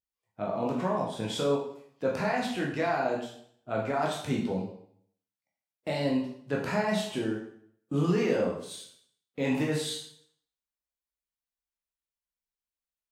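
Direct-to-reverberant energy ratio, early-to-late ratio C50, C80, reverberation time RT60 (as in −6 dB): −2.5 dB, 4.5 dB, 8.0 dB, 0.60 s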